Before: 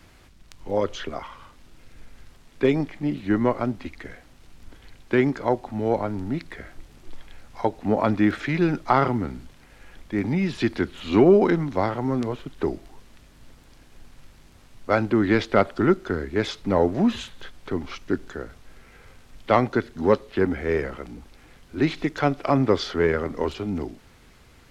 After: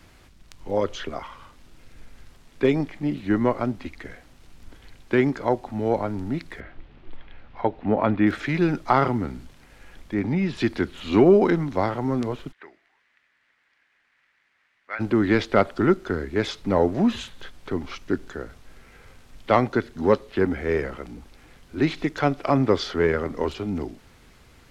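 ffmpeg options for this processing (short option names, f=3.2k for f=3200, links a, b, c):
-filter_complex "[0:a]asettb=1/sr,asplit=3[a][b][c];[a]atrim=end=6.604[d];[b]atrim=start=6.6:end=8.27,asetpts=PTS-STARTPTS,afade=t=in:d=0.004:c=qsin,afade=t=out:st=1.666:d=0.004:c=qsin,lowpass=f=3.4k:w=0.5412,lowpass=f=3.4k:w=1.3066[e];[c]atrim=start=8.266[f];[d][e]acrossfade=d=0.004:c1=hsin:c2=qsin[g];[g][f]acrossfade=d=0.004:c1=qsin:c2=hsin,asettb=1/sr,asplit=3[h][i][j];[h]atrim=end=10.144[k];[i]atrim=start=10.14:end=10.57,asetpts=PTS-STARTPTS,afade=t=in:d=0.004:c=qsin,afade=t=out:st=0.426:d=0.004:c=qsin,highshelf=f=5.8k:g=-10[l];[j]atrim=start=10.566[m];[k][l]acrossfade=d=0.004:c1=hsin:c2=qsin[n];[n][m]acrossfade=d=0.004:c1=qsin:c2=hsin,asplit=3[o][p][q];[o]afade=t=out:st=12.51:d=0.02[r];[p]bandpass=f=1.9k:t=q:w=3.4,afade=t=in:st=12.51:d=0.02,afade=t=out:st=14.99:d=0.02[s];[q]afade=t=in:st=14.99:d=0.02[t];[r][s][t]amix=inputs=3:normalize=0"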